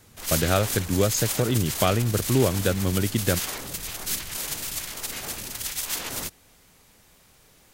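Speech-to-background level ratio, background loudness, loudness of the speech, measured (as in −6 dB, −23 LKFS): 4.0 dB, −29.0 LKFS, −25.0 LKFS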